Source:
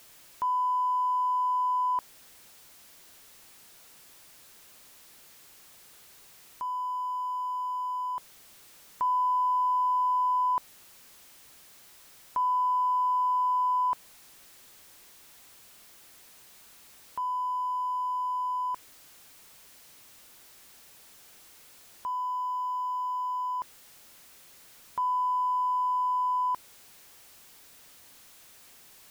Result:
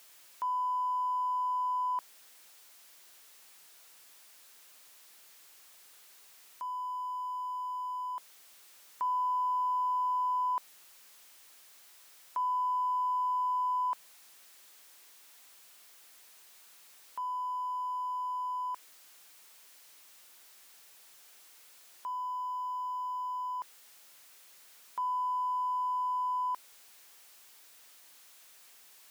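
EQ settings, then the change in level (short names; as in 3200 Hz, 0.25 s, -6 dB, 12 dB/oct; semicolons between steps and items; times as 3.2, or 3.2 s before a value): HPF 700 Hz 6 dB/oct; -3.0 dB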